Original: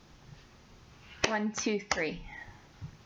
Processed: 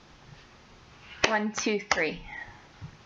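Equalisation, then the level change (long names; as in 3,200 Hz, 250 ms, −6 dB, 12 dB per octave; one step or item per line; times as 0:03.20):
high-frequency loss of the air 76 metres
low-shelf EQ 380 Hz −7 dB
+7.0 dB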